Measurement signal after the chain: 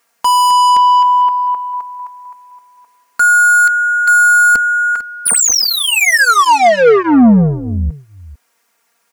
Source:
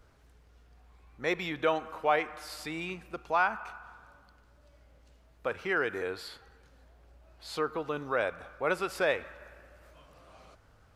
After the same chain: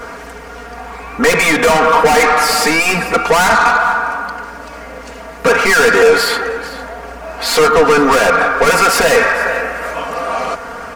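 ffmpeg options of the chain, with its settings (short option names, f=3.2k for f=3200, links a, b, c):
-filter_complex "[0:a]asplit=2[a][b];[b]highpass=f=720:p=1,volume=29dB,asoftclip=type=tanh:threshold=-13dB[c];[a][c]amix=inputs=2:normalize=0,lowpass=f=3.3k:p=1,volume=-6dB,aecho=1:1:449:0.119,asplit=2[d][e];[e]aeval=exprs='0.224*sin(PI/2*3.16*val(0)/0.224)':c=same,volume=-5dB[f];[d][f]amix=inputs=2:normalize=0,equalizer=f=3.6k:t=o:w=0.98:g=-9,aecho=1:1:4.3:0.89,volume=4.5dB"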